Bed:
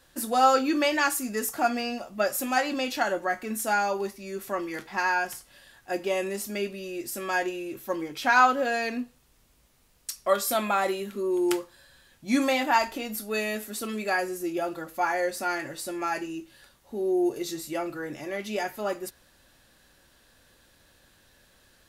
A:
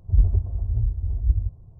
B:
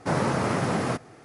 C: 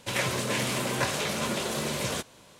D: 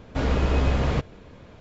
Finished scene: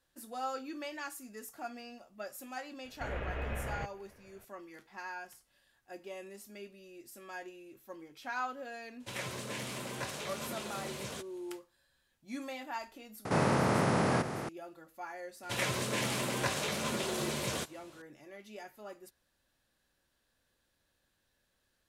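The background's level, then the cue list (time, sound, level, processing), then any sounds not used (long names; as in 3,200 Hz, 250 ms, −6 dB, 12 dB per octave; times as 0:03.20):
bed −17.5 dB
0:02.85: mix in D −17 dB + drawn EQ curve 130 Hz 0 dB, 230 Hz −5 dB, 630 Hz +6 dB, 1,100 Hz +2 dB, 1,700 Hz +11 dB, 2,800 Hz +5 dB, 4,700 Hz −11 dB
0:09.00: mix in C −11.5 dB
0:13.25: mix in B −6.5 dB + compressor on every frequency bin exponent 0.4
0:15.43: mix in C −5 dB
not used: A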